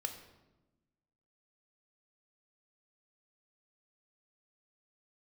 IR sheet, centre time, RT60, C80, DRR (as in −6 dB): 18 ms, 1.1 s, 11.0 dB, 5.5 dB